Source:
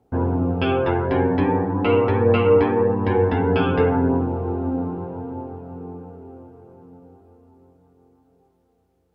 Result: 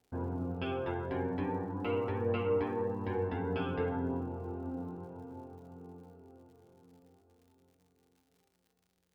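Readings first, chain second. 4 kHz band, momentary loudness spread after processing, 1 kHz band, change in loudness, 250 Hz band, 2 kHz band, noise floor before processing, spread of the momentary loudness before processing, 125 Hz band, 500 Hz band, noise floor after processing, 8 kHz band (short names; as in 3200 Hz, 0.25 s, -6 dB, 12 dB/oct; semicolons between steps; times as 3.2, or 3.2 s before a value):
-15.0 dB, 18 LU, -15.5 dB, -15.5 dB, -15.5 dB, -15.0 dB, -65 dBFS, 18 LU, -15.5 dB, -15.5 dB, -77 dBFS, n/a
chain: crackle 120/s -42 dBFS; resonator 180 Hz, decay 1.1 s, mix 70%; gain -5.5 dB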